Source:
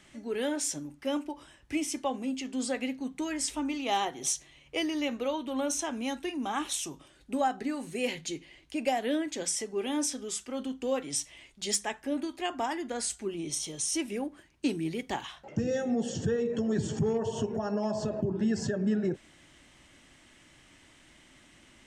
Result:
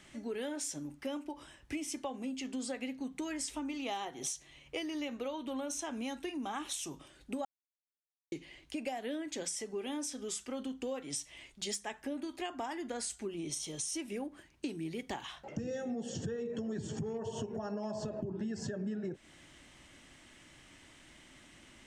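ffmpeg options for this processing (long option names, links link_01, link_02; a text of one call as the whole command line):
ffmpeg -i in.wav -filter_complex "[0:a]asplit=3[link_01][link_02][link_03];[link_01]atrim=end=7.45,asetpts=PTS-STARTPTS,afade=type=out:start_time=7.446:duration=0.004:curve=hsin[link_04];[link_02]atrim=start=7.45:end=8.32,asetpts=PTS-STARTPTS,volume=0[link_05];[link_03]atrim=start=8.32,asetpts=PTS-STARTPTS,afade=type=in:duration=0.004:curve=hsin[link_06];[link_04][link_05][link_06]concat=n=3:v=0:a=1,acompressor=threshold=-36dB:ratio=5" out.wav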